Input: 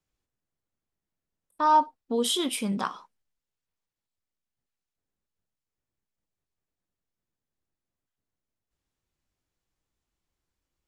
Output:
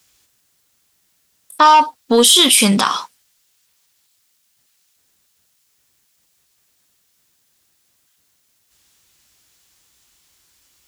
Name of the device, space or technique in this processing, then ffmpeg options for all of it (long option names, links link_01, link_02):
mastering chain: -af "highpass=51,equalizer=frequency=2300:width_type=o:width=0.77:gain=-1.5,acompressor=threshold=-26dB:ratio=1.5,asoftclip=type=tanh:threshold=-17.5dB,tiltshelf=frequency=1400:gain=-9,asoftclip=type=hard:threshold=-13dB,alimiter=level_in=24.5dB:limit=-1dB:release=50:level=0:latency=1,volume=-1dB"